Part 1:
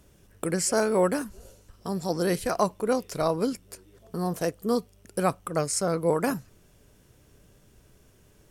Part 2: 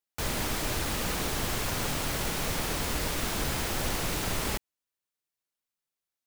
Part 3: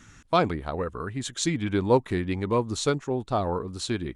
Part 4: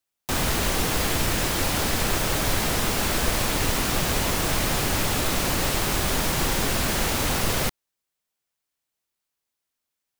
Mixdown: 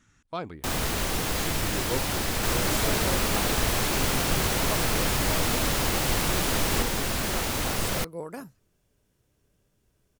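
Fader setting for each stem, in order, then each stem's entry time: -12.5 dB, +2.0 dB, -12.0 dB, -4.0 dB; 2.10 s, 2.25 s, 0.00 s, 0.35 s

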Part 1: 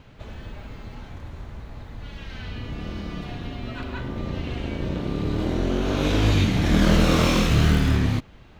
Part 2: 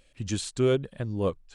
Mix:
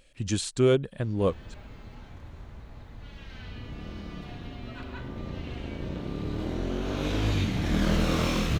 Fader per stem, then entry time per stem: -7.0 dB, +2.0 dB; 1.00 s, 0.00 s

